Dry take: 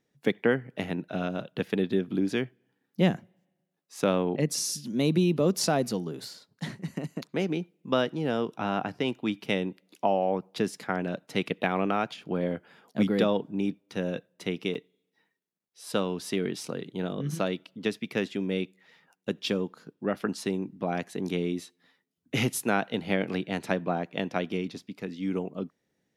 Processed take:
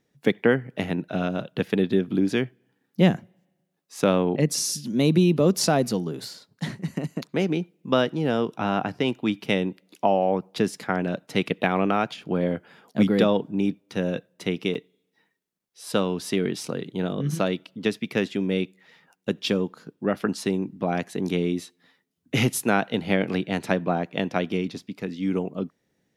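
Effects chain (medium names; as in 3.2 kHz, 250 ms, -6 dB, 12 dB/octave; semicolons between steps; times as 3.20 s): bass shelf 140 Hz +3.5 dB; trim +4 dB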